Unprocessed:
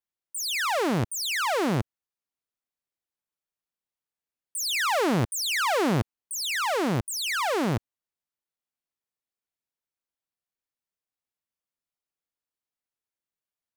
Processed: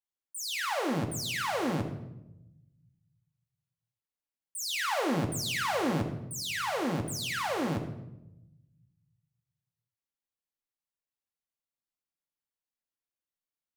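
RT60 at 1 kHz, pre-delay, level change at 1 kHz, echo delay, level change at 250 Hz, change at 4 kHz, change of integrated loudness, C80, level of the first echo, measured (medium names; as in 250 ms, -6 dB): 0.80 s, 4 ms, -5.5 dB, no echo, -4.0 dB, -5.5 dB, -5.5 dB, 10.5 dB, no echo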